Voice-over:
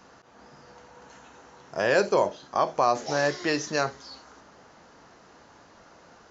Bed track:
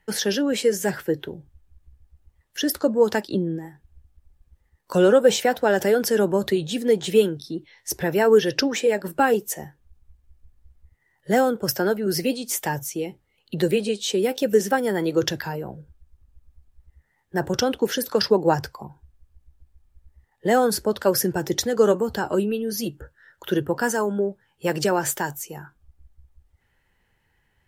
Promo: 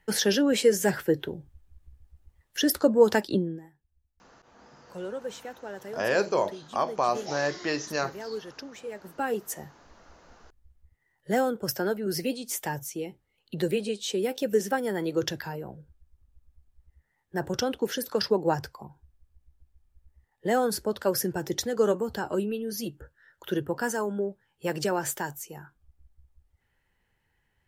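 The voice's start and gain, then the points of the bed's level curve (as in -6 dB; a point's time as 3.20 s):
4.20 s, -3.0 dB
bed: 3.34 s -0.5 dB
3.83 s -20 dB
8.77 s -20 dB
9.49 s -6 dB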